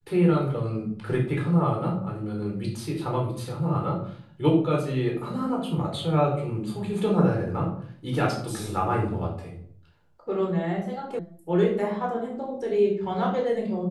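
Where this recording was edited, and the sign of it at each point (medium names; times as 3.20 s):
11.19 s: sound stops dead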